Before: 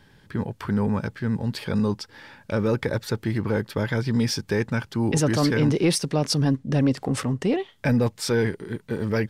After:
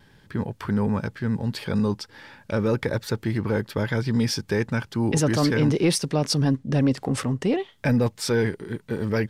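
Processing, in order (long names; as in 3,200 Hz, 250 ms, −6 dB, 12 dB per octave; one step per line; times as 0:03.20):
pitch vibrato 0.42 Hz 7.1 cents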